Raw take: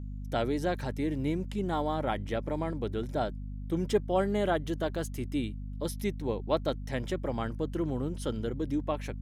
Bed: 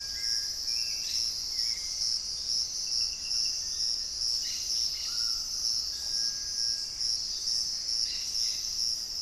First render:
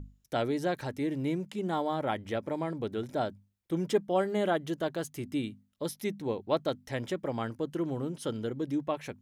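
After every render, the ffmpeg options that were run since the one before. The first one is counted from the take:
-af "bandreject=f=50:t=h:w=6,bandreject=f=100:t=h:w=6,bandreject=f=150:t=h:w=6,bandreject=f=200:t=h:w=6,bandreject=f=250:t=h:w=6"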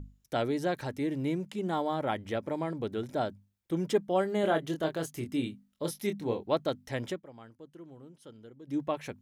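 -filter_complex "[0:a]asettb=1/sr,asplit=3[a][b][c];[a]atrim=end=4.414[d];[b]atrim=start=4.41:end=6.46,asetpts=PTS-STARTPTS,afade=t=in:d=0.004:c=qsin,afade=t=out:st=2.046:d=0.004:c=qsin,asplit=2[e][f];[f]adelay=25,volume=-6dB[g];[e][g]amix=inputs=2:normalize=0,atrim=end_sample=90405[h];[c]atrim=start=6.456[i];[d][h]acrossfade=d=0.004:c1=hsin:c2=qsin[j];[j][i]acrossfade=d=0.004:c1=qsin:c2=hsin,asplit=3[k][l][m];[k]atrim=end=7.22,asetpts=PTS-STARTPTS,afade=t=out:st=7.1:d=0.12:silence=0.149624[n];[l]atrim=start=7.22:end=8.65,asetpts=PTS-STARTPTS,volume=-16.5dB[o];[m]atrim=start=8.65,asetpts=PTS-STARTPTS,afade=t=in:d=0.12:silence=0.149624[p];[n][o][p]concat=n=3:v=0:a=1"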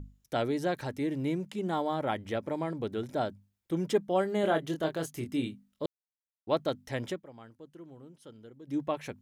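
-filter_complex "[0:a]asplit=3[a][b][c];[a]atrim=end=5.86,asetpts=PTS-STARTPTS,afade=t=out:st=5.856:d=0.004:c=hsin[d];[b]atrim=start=5.86:end=6.47,asetpts=PTS-STARTPTS,volume=0[e];[c]atrim=start=6.47,asetpts=PTS-STARTPTS,afade=t=in:d=0.004:c=hsin[f];[d][e][f]concat=n=3:v=0:a=1"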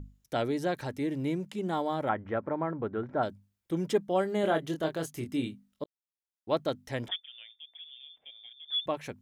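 -filter_complex "[0:a]asettb=1/sr,asplit=3[a][b][c];[a]atrim=end=2.094[d];[b]atrim=start=2.09:end=3.23,asetpts=PTS-STARTPTS,afade=t=in:d=0.004:c=qsin,afade=t=out:st=1.136:d=0.004:c=qsin,lowpass=f=1.4k:t=q:w=2[e];[c]atrim=start=3.226[f];[d][e]acrossfade=d=0.004:c1=hsin:c2=qsin[g];[g][f]acrossfade=d=0.004:c1=qsin:c2=hsin,asettb=1/sr,asplit=3[h][i][j];[h]atrim=end=7.084[k];[i]atrim=start=7.08:end=8.86,asetpts=PTS-STARTPTS,afade=t=in:d=0.004:c=qsin,afade=t=out:st=1.776:d=0.004:c=qsin,lowpass=f=3.1k:t=q:w=0.5098,lowpass=f=3.1k:t=q:w=0.6013,lowpass=f=3.1k:t=q:w=0.9,lowpass=f=3.1k:t=q:w=2.563,afreqshift=-3700[l];[j]atrim=start=8.856[m];[k][l]acrossfade=d=0.004:c1=hsin:c2=qsin[n];[n][m]acrossfade=d=0.004:c1=qsin:c2=hsin,asplit=2[o][p];[o]atrim=end=5.84,asetpts=PTS-STARTPTS,afade=t=out:st=5.836:d=0.004:c=hsin[q];[p]atrim=start=5.84,asetpts=PTS-STARTPTS,afade=t=in:d=0.72[r];[q][r]concat=n=2:v=0:a=1"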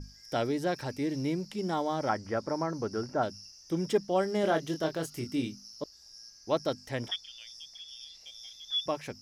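-filter_complex "[1:a]volume=-20.5dB[a];[0:a][a]amix=inputs=2:normalize=0"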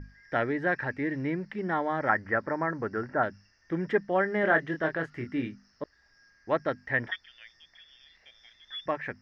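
-af "lowpass=f=1.8k:t=q:w=7"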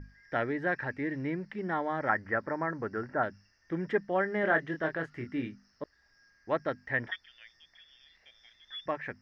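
-af "volume=-3dB"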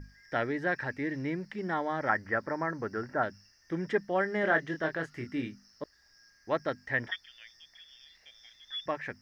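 -af "bass=f=250:g=0,treble=f=4k:g=12"

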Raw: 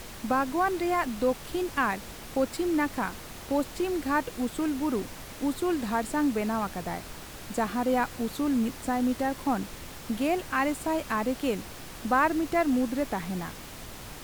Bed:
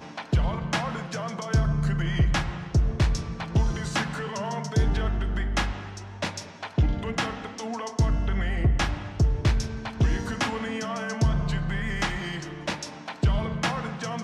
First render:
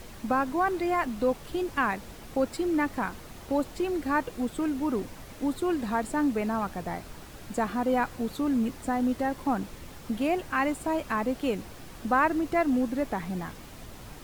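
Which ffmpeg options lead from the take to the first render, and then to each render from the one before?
-af "afftdn=nr=6:nf=-43"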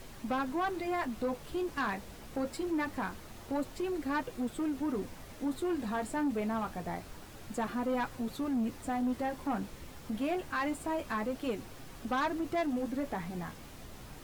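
-af "flanger=delay=7.3:depth=7.5:regen=-44:speed=0.25:shape=sinusoidal,asoftclip=type=tanh:threshold=-26dB"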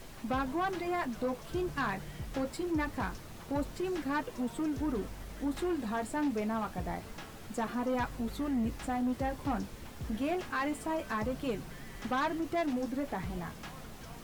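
-filter_complex "[1:a]volume=-20.5dB[a];[0:a][a]amix=inputs=2:normalize=0"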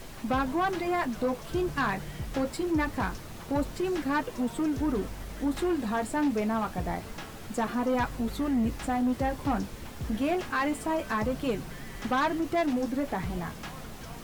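-af "volume=5dB"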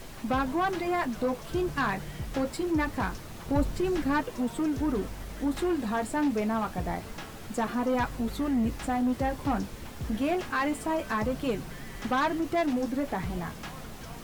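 -filter_complex "[0:a]asettb=1/sr,asplit=3[a][b][c];[a]atrim=end=3.464[d];[b]atrim=start=3.46:end=4.21,asetpts=PTS-STARTPTS,afade=t=in:d=0.004:c=qsin,afade=t=out:st=0.746:d=0.004:c=qsin,lowshelf=f=160:g=8.5[e];[c]atrim=start=4.206[f];[d][e]acrossfade=d=0.004:c1=hsin:c2=qsin[g];[g][f]acrossfade=d=0.004:c1=qsin:c2=hsin"

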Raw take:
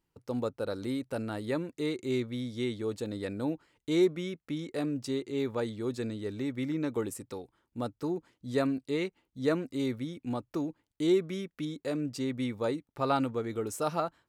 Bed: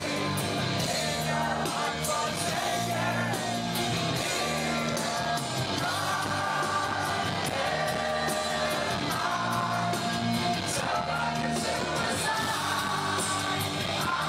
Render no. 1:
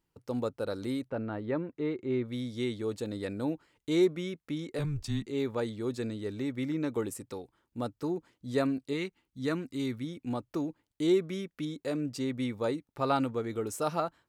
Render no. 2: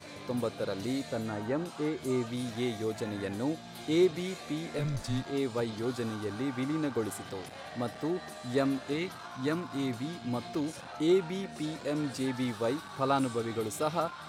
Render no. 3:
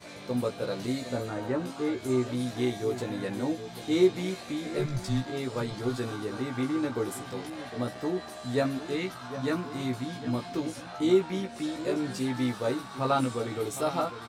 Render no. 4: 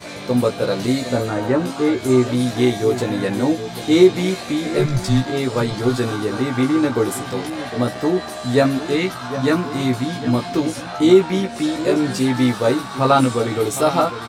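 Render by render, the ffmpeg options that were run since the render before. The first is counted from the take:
-filter_complex "[0:a]asplit=3[a][b][c];[a]afade=t=out:st=1.08:d=0.02[d];[b]lowpass=1.9k,afade=t=in:st=1.08:d=0.02,afade=t=out:st=2.24:d=0.02[e];[c]afade=t=in:st=2.24:d=0.02[f];[d][e][f]amix=inputs=3:normalize=0,asplit=3[g][h][i];[g]afade=t=out:st=4.78:d=0.02[j];[h]afreqshift=-150,afade=t=in:st=4.78:d=0.02,afade=t=out:st=5.25:d=0.02[k];[i]afade=t=in:st=5.25:d=0.02[l];[j][k][l]amix=inputs=3:normalize=0,asettb=1/sr,asplit=3[m][n][o];[m]atrim=end=8.934[p];[n]atrim=start=8.93:end=10.04,asetpts=PTS-STARTPTS,afade=t=in:d=0.004:c=qsin,afade=t=out:st=1.106:d=0.004:c=qsin,equalizer=f=570:w=1.4:g=-8[q];[o]atrim=start=10.036[r];[p][q]acrossfade=d=0.004:c1=hsin:c2=qsin[s];[s][r]acrossfade=d=0.004:c1=qsin:c2=hsin"
-filter_complex "[1:a]volume=-16dB[a];[0:a][a]amix=inputs=2:normalize=0"
-filter_complex "[0:a]asplit=2[a][b];[b]adelay=16,volume=-3dB[c];[a][c]amix=inputs=2:normalize=0,asplit=2[d][e];[e]adelay=758,volume=-12dB,highshelf=f=4k:g=-17.1[f];[d][f]amix=inputs=2:normalize=0"
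-af "volume=12dB,alimiter=limit=-2dB:level=0:latency=1"

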